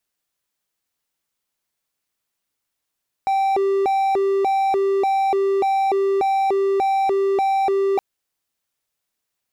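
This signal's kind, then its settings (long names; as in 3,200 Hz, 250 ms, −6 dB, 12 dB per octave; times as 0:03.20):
siren hi-lo 392–779 Hz 1.7 per second triangle −14 dBFS 4.72 s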